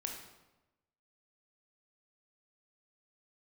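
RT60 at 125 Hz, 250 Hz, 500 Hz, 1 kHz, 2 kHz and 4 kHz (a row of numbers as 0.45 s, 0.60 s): 1.2 s, 1.1 s, 1.1 s, 1.0 s, 0.85 s, 0.75 s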